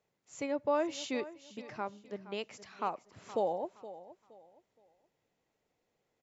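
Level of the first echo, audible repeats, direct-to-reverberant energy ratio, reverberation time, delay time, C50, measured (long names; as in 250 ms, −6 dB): −15.5 dB, 2, no reverb audible, no reverb audible, 469 ms, no reverb audible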